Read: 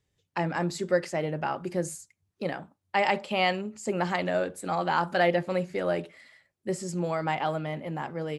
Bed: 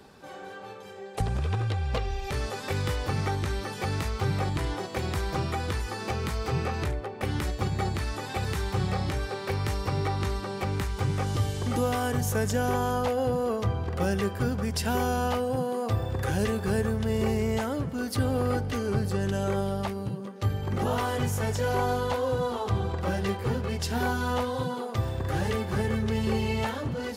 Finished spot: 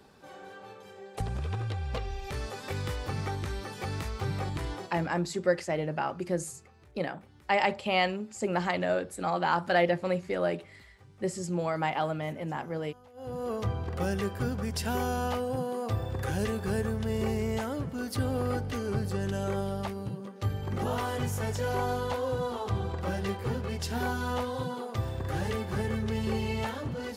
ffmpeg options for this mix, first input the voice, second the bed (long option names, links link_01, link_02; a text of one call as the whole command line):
ffmpeg -i stem1.wav -i stem2.wav -filter_complex "[0:a]adelay=4550,volume=-1dB[link_01];[1:a]volume=20dB,afade=type=out:start_time=4.73:duration=0.41:silence=0.0668344,afade=type=in:start_time=13.13:duration=0.45:silence=0.0562341[link_02];[link_01][link_02]amix=inputs=2:normalize=0" out.wav